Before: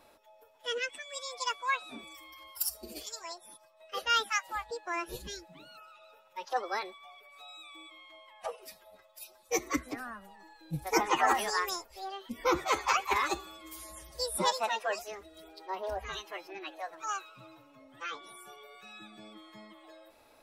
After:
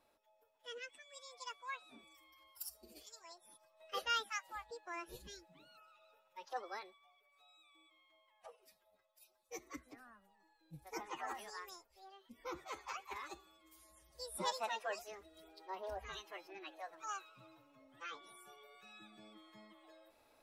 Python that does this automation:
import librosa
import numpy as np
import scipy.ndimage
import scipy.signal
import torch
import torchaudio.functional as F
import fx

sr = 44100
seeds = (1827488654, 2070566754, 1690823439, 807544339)

y = fx.gain(x, sr, db=fx.line((3.24, -14.5), (3.95, -3.5), (4.23, -11.0), (6.67, -11.0), (7.11, -18.0), (14.0, -18.0), (14.54, -8.5)))